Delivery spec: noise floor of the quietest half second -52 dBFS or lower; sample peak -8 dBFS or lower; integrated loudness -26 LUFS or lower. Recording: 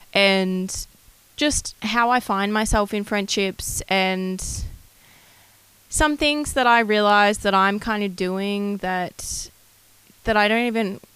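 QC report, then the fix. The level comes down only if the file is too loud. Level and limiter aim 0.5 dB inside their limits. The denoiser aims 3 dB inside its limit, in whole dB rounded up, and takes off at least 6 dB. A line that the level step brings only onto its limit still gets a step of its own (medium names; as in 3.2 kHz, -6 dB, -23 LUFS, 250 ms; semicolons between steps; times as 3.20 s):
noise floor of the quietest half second -54 dBFS: pass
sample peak -6.0 dBFS: fail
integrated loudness -21.0 LUFS: fail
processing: trim -5.5 dB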